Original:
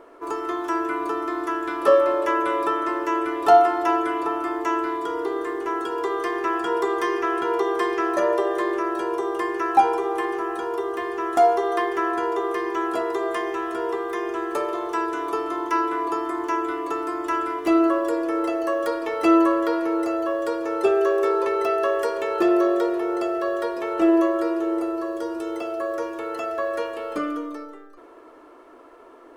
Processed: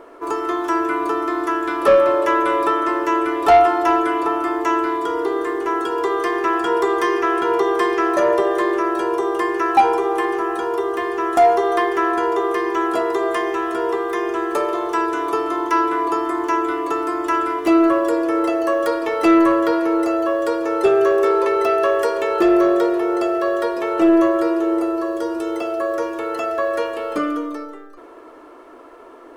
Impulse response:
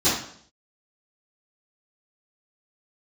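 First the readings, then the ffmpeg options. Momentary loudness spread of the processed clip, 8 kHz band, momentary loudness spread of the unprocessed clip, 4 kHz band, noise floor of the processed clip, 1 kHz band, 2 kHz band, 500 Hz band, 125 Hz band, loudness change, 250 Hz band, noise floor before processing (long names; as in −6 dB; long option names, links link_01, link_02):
8 LU, +5.0 dB, 9 LU, +5.0 dB, −41 dBFS, +4.5 dB, +5.0 dB, +4.5 dB, can't be measured, +4.5 dB, +4.5 dB, −47 dBFS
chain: -af "asoftclip=type=tanh:threshold=-11dB,volume=5.5dB"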